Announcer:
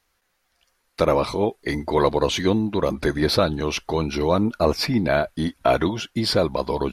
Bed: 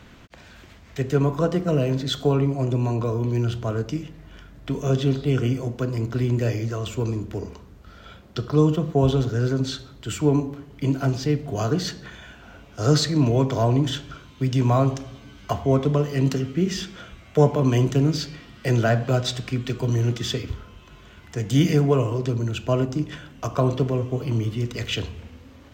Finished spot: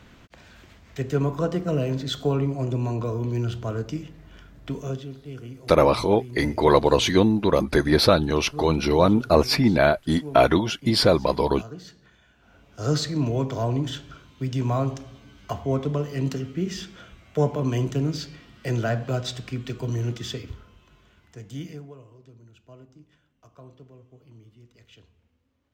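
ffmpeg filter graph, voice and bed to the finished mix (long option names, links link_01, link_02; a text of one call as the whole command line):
ffmpeg -i stem1.wav -i stem2.wav -filter_complex "[0:a]adelay=4700,volume=2dB[link_01];[1:a]volume=8.5dB,afade=type=out:start_time=4.66:duration=0.41:silence=0.211349,afade=type=in:start_time=12.34:duration=0.52:silence=0.266073,afade=type=out:start_time=20.09:duration=1.86:silence=0.0841395[link_02];[link_01][link_02]amix=inputs=2:normalize=0" out.wav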